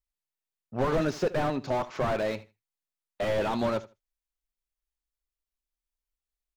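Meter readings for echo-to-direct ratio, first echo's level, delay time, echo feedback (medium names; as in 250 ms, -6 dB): -18.0 dB, -18.0 dB, 77 ms, 17%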